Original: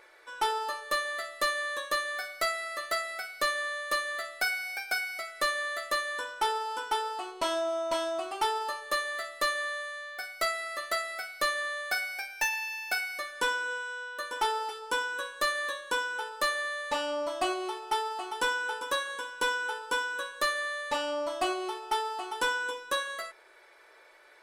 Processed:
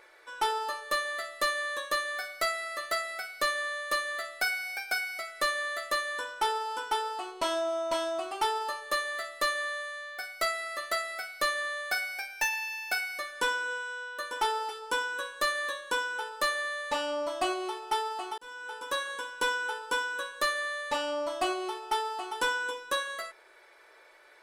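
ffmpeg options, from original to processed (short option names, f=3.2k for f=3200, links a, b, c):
-filter_complex "[0:a]asplit=2[a][b];[a]atrim=end=18.38,asetpts=PTS-STARTPTS,afade=t=out:st=18.376:d=0.004:c=hsin[c];[b]atrim=start=18.38,asetpts=PTS-STARTPTS,afade=t=in:d=0.68[d];[c][d]concat=n=2:v=0:a=1"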